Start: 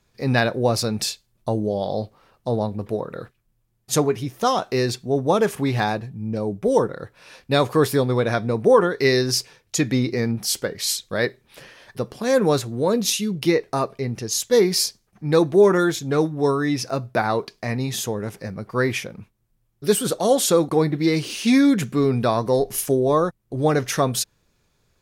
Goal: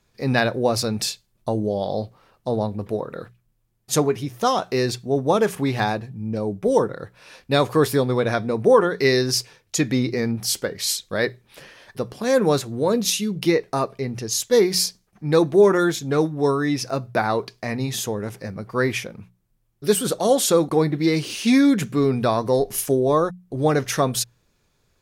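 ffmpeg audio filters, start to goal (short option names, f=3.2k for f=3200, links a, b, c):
-af "bandreject=f=60:t=h:w=6,bandreject=f=120:t=h:w=6,bandreject=f=180:t=h:w=6"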